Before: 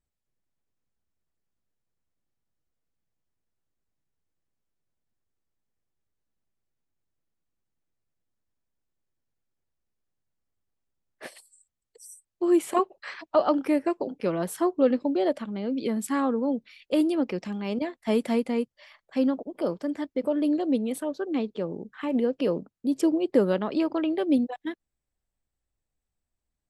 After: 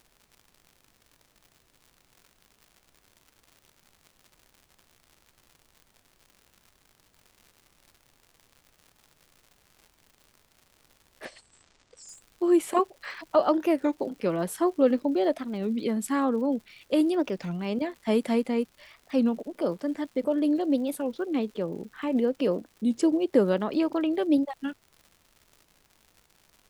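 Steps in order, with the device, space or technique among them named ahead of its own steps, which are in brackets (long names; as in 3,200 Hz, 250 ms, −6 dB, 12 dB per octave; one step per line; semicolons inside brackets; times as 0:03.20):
warped LP (wow of a warped record 33 1/3 rpm, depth 250 cents; surface crackle 140 per second −43 dBFS; pink noise bed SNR 38 dB)
0:11.25–0:12.09: Butterworth low-pass 7,800 Hz 36 dB per octave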